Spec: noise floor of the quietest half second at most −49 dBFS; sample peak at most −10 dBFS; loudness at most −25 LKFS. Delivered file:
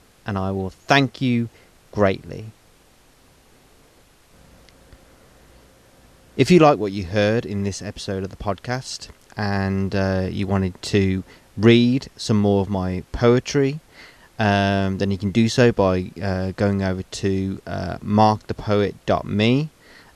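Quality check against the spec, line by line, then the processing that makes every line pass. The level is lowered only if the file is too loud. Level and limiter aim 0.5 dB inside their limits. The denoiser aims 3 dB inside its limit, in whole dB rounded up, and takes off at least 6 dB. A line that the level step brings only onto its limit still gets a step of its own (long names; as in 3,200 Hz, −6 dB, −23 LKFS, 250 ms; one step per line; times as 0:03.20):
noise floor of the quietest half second −54 dBFS: in spec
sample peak −2.5 dBFS: out of spec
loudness −20.5 LKFS: out of spec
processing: level −5 dB
brickwall limiter −10.5 dBFS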